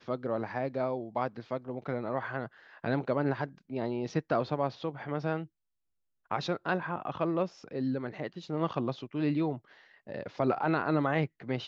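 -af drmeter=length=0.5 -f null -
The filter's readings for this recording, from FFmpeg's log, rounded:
Channel 1: DR: 12.4
Overall DR: 12.4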